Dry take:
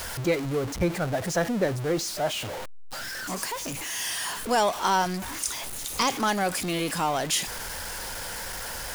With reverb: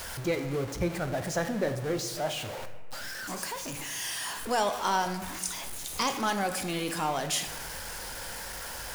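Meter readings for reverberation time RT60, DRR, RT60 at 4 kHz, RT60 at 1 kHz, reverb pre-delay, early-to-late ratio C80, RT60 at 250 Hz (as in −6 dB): 1.4 s, 7.5 dB, 0.85 s, 1.4 s, 19 ms, 11.5 dB, 1.5 s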